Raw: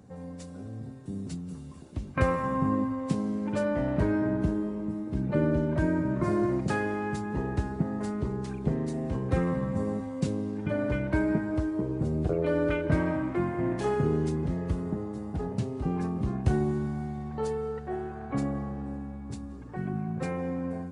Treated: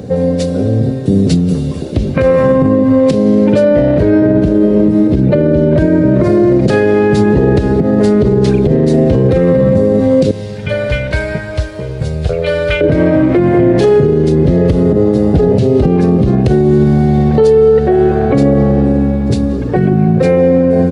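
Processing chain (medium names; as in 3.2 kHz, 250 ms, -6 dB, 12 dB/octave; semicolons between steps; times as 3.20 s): 10.31–12.81 s: amplifier tone stack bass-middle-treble 10-0-10; compression 6:1, threshold -30 dBFS, peak gain reduction 11.5 dB; graphic EQ 125/500/1000/4000/8000 Hz +3/+11/-9/+6/-6 dB; delay 887 ms -22.5 dB; loudness maximiser +25 dB; trim -1 dB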